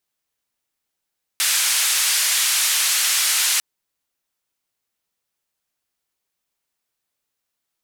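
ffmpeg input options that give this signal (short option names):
-f lavfi -i "anoisesrc=c=white:d=2.2:r=44100:seed=1,highpass=f=1600,lowpass=f=11000,volume=-10.5dB"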